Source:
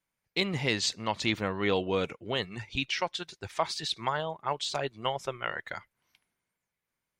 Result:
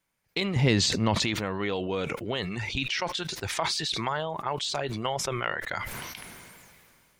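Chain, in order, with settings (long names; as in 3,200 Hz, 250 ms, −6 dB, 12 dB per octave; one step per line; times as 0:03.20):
downward compressor 4 to 1, threshold −35 dBFS, peak gain reduction 11.5 dB
0:00.56–0:01.15: low-shelf EQ 390 Hz +12 dB
level that may fall only so fast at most 24 dB per second
level +6.5 dB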